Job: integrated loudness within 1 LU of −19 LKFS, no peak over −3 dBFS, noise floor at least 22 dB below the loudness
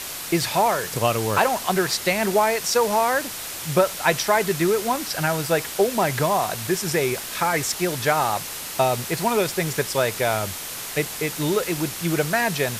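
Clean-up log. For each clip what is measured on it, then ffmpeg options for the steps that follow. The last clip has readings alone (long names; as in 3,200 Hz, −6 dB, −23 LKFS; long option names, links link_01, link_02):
background noise floor −33 dBFS; target noise floor −45 dBFS; integrated loudness −22.5 LKFS; sample peak −4.5 dBFS; target loudness −19.0 LKFS
→ -af "afftdn=noise_reduction=12:noise_floor=-33"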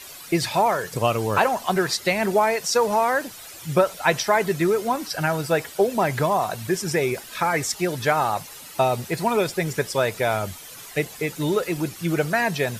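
background noise floor −41 dBFS; target noise floor −45 dBFS
→ -af "afftdn=noise_reduction=6:noise_floor=-41"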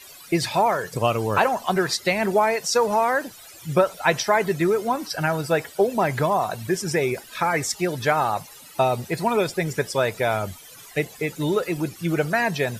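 background noise floor −45 dBFS; integrated loudness −23.0 LKFS; sample peak −5.0 dBFS; target loudness −19.0 LKFS
→ -af "volume=4dB,alimiter=limit=-3dB:level=0:latency=1"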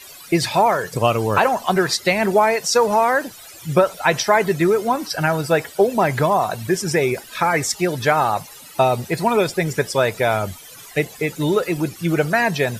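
integrated loudness −19.0 LKFS; sample peak −3.0 dBFS; background noise floor −41 dBFS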